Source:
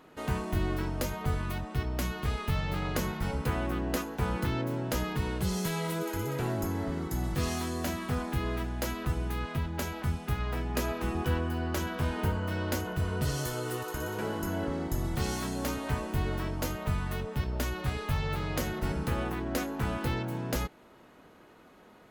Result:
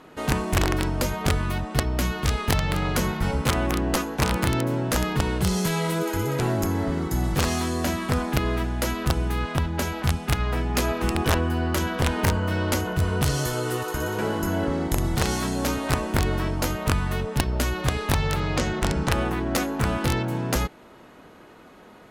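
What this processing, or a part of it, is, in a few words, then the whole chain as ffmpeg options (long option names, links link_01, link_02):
overflowing digital effects unit: -filter_complex "[0:a]asettb=1/sr,asplit=3[link_01][link_02][link_03];[link_01]atrim=end=18.404[link_04];[link_02]atrim=start=18.4:end=19.12,asetpts=PTS-STARTPTS,afade=type=in:duration=0.004:curve=qsin,afade=type=out:start_time=0.716:duration=0.004:curve=qsin,lowpass=frequency=7800:width=0.5412,lowpass=frequency=7800:width=1.3066[link_05];[link_03]atrim=start=19.116[link_06];[link_04][link_05]acrossfade=duration=0.004:curve1=hsin:curve2=qsin[link_07];[link_07][link_06]acrossfade=duration=0.004:curve1=qsin:curve2=hsin,aeval=exprs='(mod(10.6*val(0)+1,2)-1)/10.6':channel_layout=same,lowpass=13000,volume=7.5dB"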